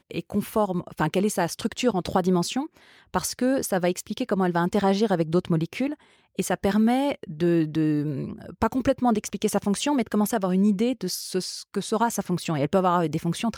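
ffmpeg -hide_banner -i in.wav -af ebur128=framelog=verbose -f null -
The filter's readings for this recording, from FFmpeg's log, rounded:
Integrated loudness:
  I:         -24.9 LUFS
  Threshold: -35.1 LUFS
Loudness range:
  LRA:         1.3 LU
  Threshold: -45.0 LUFS
  LRA low:   -25.7 LUFS
  LRA high:  -24.5 LUFS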